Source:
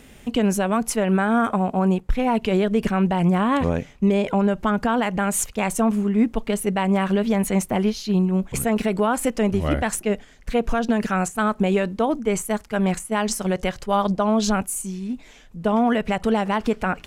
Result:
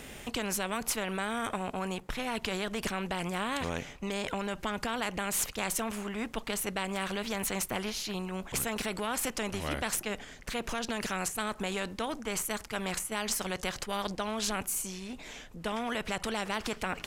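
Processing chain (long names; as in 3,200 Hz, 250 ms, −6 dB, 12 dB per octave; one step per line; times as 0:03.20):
every bin compressed towards the loudest bin 2 to 1
level −6.5 dB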